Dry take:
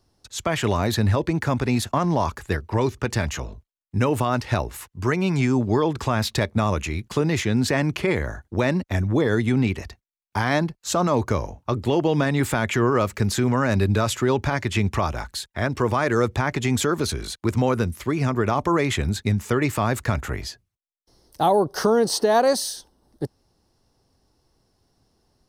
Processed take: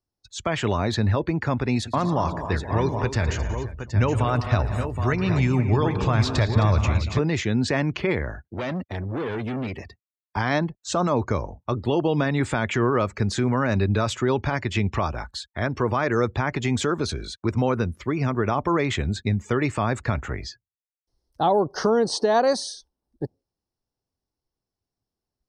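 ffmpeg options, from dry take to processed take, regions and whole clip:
ffmpeg -i in.wav -filter_complex "[0:a]asettb=1/sr,asplit=3[link_01][link_02][link_03];[link_01]atrim=end=1.764[link_04];[link_02]atrim=start=1.76:end=7.19,asetpts=PTS-STARTPTS,afade=type=in:duration=0.004:curve=qsin,afade=type=out:start_time=5.426:duration=0.004:curve=qsin,asubboost=boost=4.5:cutoff=110,aecho=1:1:113|180|225|264|484|770:0.2|0.237|0.141|0.251|0.158|0.398,atrim=end_sample=239463[link_05];[link_03]atrim=start=7.186[link_06];[link_04][link_05]acrossfade=duration=0.004:curve1=hsin:curve2=qsin[link_07];[link_07][link_06]acrossfade=duration=0.004:curve1=qsin:curve2=hsin,asettb=1/sr,asplit=3[link_08][link_09][link_10];[link_08]atrim=end=8.444[link_11];[link_09]atrim=start=8.44:end=10.37,asetpts=PTS-STARTPTS,afade=type=in:duration=0.004:curve=qsin,afade=type=out:start_time=1.926:duration=0.004:curve=qsin,asoftclip=type=hard:threshold=-24dB,highpass=90[link_12];[link_10]atrim=start=10.366[link_13];[link_11][link_12]acrossfade=duration=0.004:curve1=hsin:curve2=qsin[link_14];[link_14][link_13]acrossfade=duration=0.004:curve1=qsin:curve2=hsin,acrossover=split=8100[link_15][link_16];[link_16]acompressor=threshold=-53dB:ratio=4:attack=1:release=60[link_17];[link_15][link_17]amix=inputs=2:normalize=0,afftdn=noise_reduction=20:noise_floor=-43,volume=-1.5dB" out.wav

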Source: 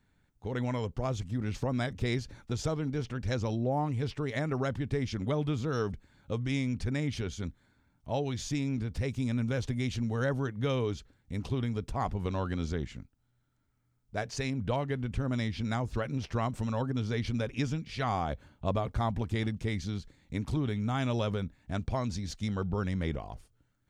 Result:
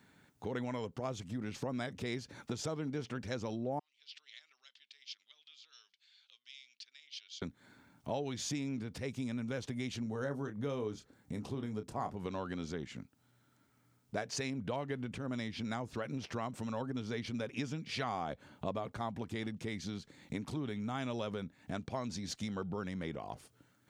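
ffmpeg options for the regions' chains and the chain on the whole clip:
ffmpeg -i in.wav -filter_complex "[0:a]asettb=1/sr,asplit=3[link_01][link_02][link_03];[link_01]atrim=end=3.794[link_04];[link_02]atrim=start=3.79:end=7.42,asetpts=PTS-STARTPTS,afade=type=in:duration=0.004:curve=qsin,afade=type=out:start_time=3.626:duration=0.004:curve=qsin,acompressor=threshold=-48dB:ratio=4:attack=3.2:release=140:knee=1:detection=peak,asuperpass=centerf=3900:order=4:qfactor=1.5[link_05];[link_03]atrim=start=7.416[link_06];[link_04][link_05]acrossfade=duration=0.004:curve1=hsin:curve2=qsin[link_07];[link_07][link_06]acrossfade=duration=0.004:curve1=qsin:curve2=hsin,asettb=1/sr,asplit=3[link_08][link_09][link_10];[link_08]atrim=end=10.034[link_11];[link_09]atrim=start=10.03:end=12.17,asetpts=PTS-STARTPTS,afade=type=in:duration=0.004:curve=qsin,afade=type=out:start_time=2.136:duration=0.004:curve=qsin,equalizer=frequency=2800:width=0.8:gain=-7,asplit=2[link_12][link_13];[link_13]adelay=28,volume=-9dB[link_14];[link_12][link_14]amix=inputs=2:normalize=0,atrim=end_sample=94374[link_15];[link_10]atrim=start=12.166[link_16];[link_11][link_15]acrossfade=duration=0.004:curve1=hsin:curve2=qsin[link_17];[link_17][link_16]acrossfade=duration=0.004:curve1=qsin:curve2=hsin,acompressor=threshold=-45dB:ratio=4,highpass=170,volume=9.5dB" out.wav

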